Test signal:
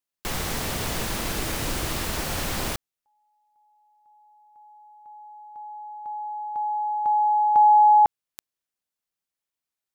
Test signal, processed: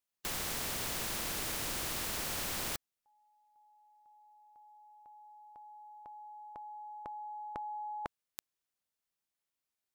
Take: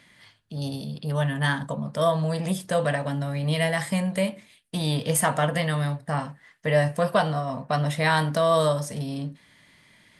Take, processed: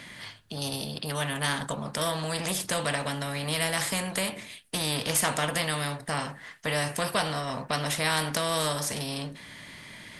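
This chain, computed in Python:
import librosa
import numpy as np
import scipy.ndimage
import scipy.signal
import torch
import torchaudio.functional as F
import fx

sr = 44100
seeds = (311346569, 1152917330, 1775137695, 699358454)

y = fx.spectral_comp(x, sr, ratio=2.0)
y = y * 10.0 ** (-2.0 / 20.0)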